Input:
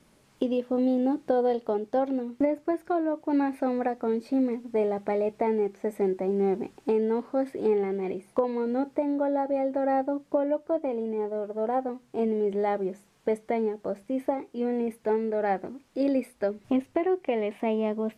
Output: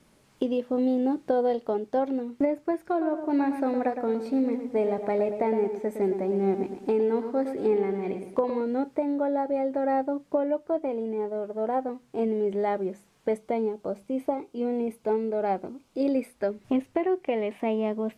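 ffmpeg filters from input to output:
-filter_complex "[0:a]asettb=1/sr,asplit=3[a][b][c];[a]atrim=end=2.784[d];[b]atrim=start=2.78:end=8.61,asetpts=PTS-STARTPTS,afade=t=in:d=0.004:c=qsin,afade=t=out:st=5.826:d=0.004:c=qsin,asplit=2[e][f];[f]adelay=112,lowpass=f=3.3k:p=1,volume=-8dB,asplit=2[g][h];[h]adelay=112,lowpass=f=3.3k:p=1,volume=0.41,asplit=2[i][j];[j]adelay=112,lowpass=f=3.3k:p=1,volume=0.41,asplit=2[k][l];[l]adelay=112,lowpass=f=3.3k:p=1,volume=0.41,asplit=2[m][n];[n]adelay=112,lowpass=f=3.3k:p=1,volume=0.41[o];[e][g][i][k][m][o]amix=inputs=6:normalize=0,atrim=end_sample=257103[p];[c]atrim=start=8.606[q];[d][p]acrossfade=d=0.004:c1=hsin:c2=qsin[r];[r][q]acrossfade=d=0.004:c1=qsin:c2=hsin,asettb=1/sr,asplit=3[s][t][u];[s]atrim=end=13.374[v];[t]atrim=start=13.37:end=16.16,asetpts=PTS-STARTPTS,afade=t=in:d=0.004:c=qsin,afade=t=out:st=2.786:d=0.004:c=qsin,equalizer=f=1.8k:w=5.8:g=-13.5[w];[u]atrim=start=16.156[x];[v][w]acrossfade=d=0.004:c1=hsin:c2=qsin[y];[y][x]acrossfade=d=0.004:c1=qsin:c2=hsin"

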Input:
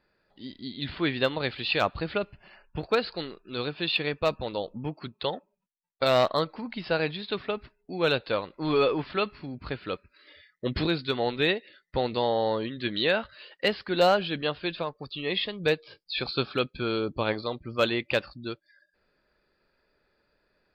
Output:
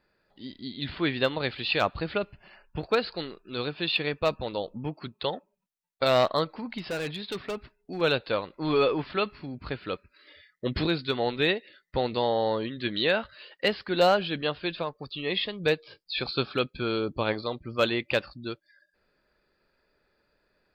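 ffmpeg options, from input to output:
-filter_complex "[0:a]asettb=1/sr,asplit=3[a][b][c];[a]atrim=end=6.784[d];[b]atrim=start=6.78:end=8.01,asetpts=PTS-STARTPTS,afade=t=in:d=0.004:c=qsin,afade=t=out:st=1.226:d=0.004:c=qsin,asoftclip=type=hard:threshold=-28dB[e];[c]atrim=start=8.006[f];[d][e]acrossfade=d=0.004:c1=hsin:c2=qsin[g];[g][f]acrossfade=d=0.004:c1=qsin:c2=hsin"

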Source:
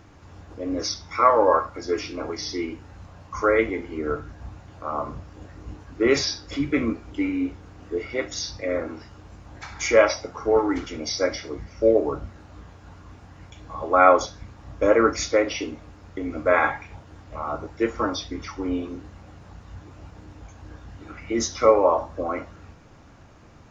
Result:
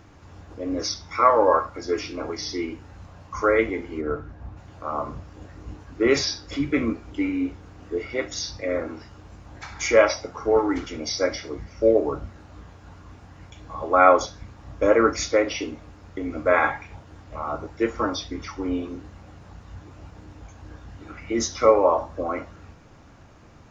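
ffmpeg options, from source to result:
-filter_complex "[0:a]asplit=3[a][b][c];[a]afade=t=out:st=4:d=0.02[d];[b]lowpass=f=1.6k:p=1,afade=t=in:st=4:d=0.02,afade=t=out:st=4.56:d=0.02[e];[c]afade=t=in:st=4.56:d=0.02[f];[d][e][f]amix=inputs=3:normalize=0"

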